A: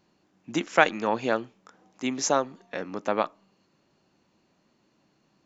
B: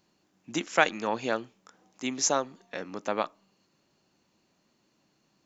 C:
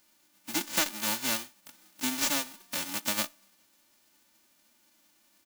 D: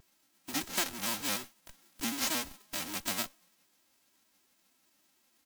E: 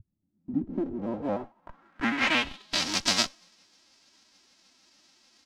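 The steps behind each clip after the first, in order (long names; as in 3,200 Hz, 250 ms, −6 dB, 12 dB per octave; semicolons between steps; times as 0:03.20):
high-shelf EQ 3,800 Hz +8.5 dB; level −4 dB
spectral envelope flattened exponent 0.1; comb filter 3.4 ms, depth 80%; downward compressor 2.5 to 1, threshold −31 dBFS, peak gain reduction 11.5 dB; level +2.5 dB
in parallel at −10 dB: comparator with hysteresis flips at −37 dBFS; on the sum: pitch modulation by a square or saw wave square 6.6 Hz, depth 160 cents; level −4.5 dB
low-pass filter sweep 110 Hz → 5,200 Hz, 0:00.04–0:02.86; level +8 dB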